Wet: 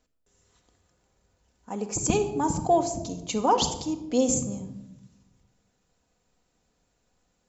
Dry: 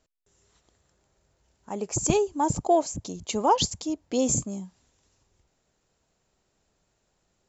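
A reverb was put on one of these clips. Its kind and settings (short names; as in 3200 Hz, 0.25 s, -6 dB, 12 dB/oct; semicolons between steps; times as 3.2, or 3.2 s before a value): shoebox room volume 3400 m³, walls furnished, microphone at 1.9 m; gain -1.5 dB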